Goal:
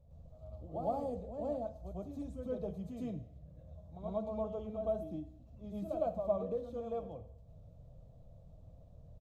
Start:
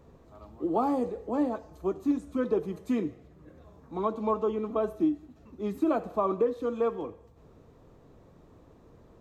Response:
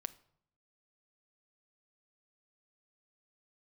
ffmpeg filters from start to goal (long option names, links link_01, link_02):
-filter_complex "[0:a]firequalizer=gain_entry='entry(100,0);entry(350,-28);entry(600,-4);entry(960,-24);entry(1800,-27);entry(3200,-16)':delay=0.05:min_phase=1,asplit=2[link_01][link_02];[1:a]atrim=start_sample=2205,adelay=109[link_03];[link_02][link_03]afir=irnorm=-1:irlink=0,volume=9dB[link_04];[link_01][link_04]amix=inputs=2:normalize=0,volume=-2.5dB"